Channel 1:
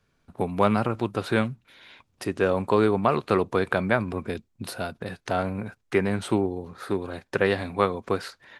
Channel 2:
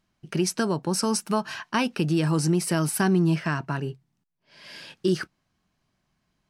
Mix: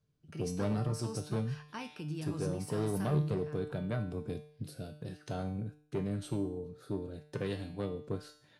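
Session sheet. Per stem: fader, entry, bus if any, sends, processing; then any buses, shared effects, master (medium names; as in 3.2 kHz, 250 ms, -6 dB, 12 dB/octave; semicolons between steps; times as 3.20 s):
-2.0 dB, 0.00 s, no send, ten-band graphic EQ 125 Hz +11 dB, 1 kHz -7 dB, 2 kHz -10 dB; rotary cabinet horn 0.9 Hz
2.97 s -11.5 dB -> 3.58 s -23.5 dB, 0.00 s, no send, none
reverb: none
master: Chebyshev shaper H 5 -17 dB, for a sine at -10.5 dBFS; feedback comb 150 Hz, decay 0.58 s, harmonics all, mix 80%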